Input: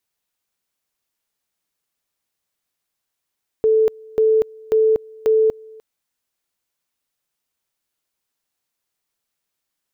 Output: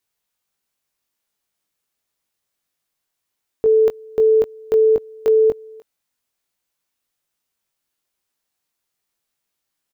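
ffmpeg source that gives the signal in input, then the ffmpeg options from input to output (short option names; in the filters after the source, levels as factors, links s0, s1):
-f lavfi -i "aevalsrc='pow(10,(-11.5-26*gte(mod(t,0.54),0.24))/20)*sin(2*PI*439*t)':d=2.16:s=44100"
-filter_complex "[0:a]asplit=2[s0][s1];[s1]adelay=20,volume=0.531[s2];[s0][s2]amix=inputs=2:normalize=0"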